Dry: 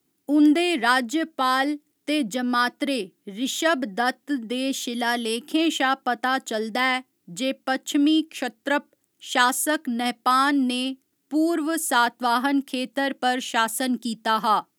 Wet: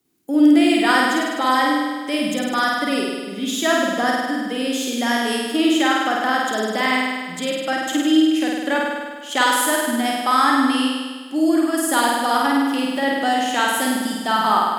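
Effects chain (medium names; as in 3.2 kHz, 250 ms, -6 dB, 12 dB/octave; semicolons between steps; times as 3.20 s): flutter echo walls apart 8.7 m, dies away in 1.5 s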